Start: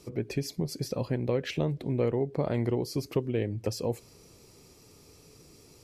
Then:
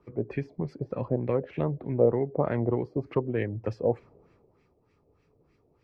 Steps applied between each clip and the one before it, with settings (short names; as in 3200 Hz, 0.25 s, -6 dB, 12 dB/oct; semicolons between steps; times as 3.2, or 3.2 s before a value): LFO low-pass sine 3.3 Hz 600–2000 Hz; three-band expander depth 40%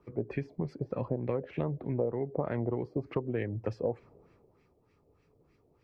compressor 6:1, threshold -26 dBFS, peak gain reduction 10.5 dB; gain -1 dB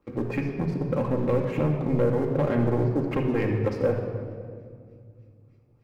sample leveller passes 2; shoebox room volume 4000 m³, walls mixed, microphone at 2.2 m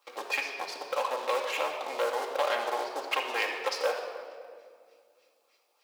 HPF 710 Hz 24 dB/oct; resonant high shelf 2600 Hz +8 dB, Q 1.5; gain +6.5 dB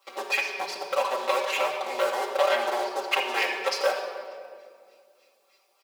comb 5.2 ms, depth 91%; gain +2 dB